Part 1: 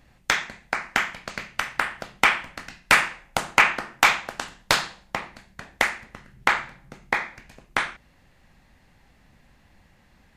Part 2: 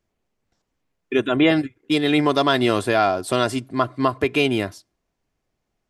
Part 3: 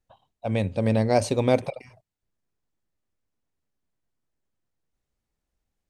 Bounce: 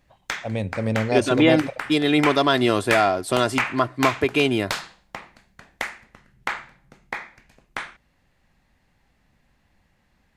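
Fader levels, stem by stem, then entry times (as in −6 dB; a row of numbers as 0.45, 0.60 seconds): −7.0, −0.5, −1.5 decibels; 0.00, 0.00, 0.00 seconds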